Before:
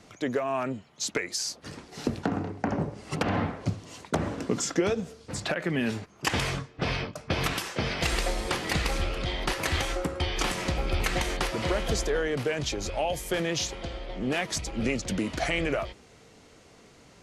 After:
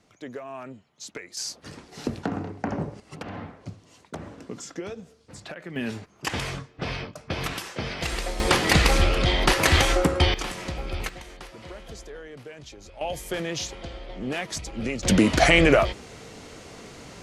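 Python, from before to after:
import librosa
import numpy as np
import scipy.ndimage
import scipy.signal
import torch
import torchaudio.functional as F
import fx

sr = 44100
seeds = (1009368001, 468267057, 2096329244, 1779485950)

y = fx.gain(x, sr, db=fx.steps((0.0, -9.0), (1.37, -0.5), (3.0, -9.5), (5.76, -2.0), (8.4, 9.0), (10.34, -3.5), (11.09, -13.5), (13.01, -1.5), (15.03, 11.0)))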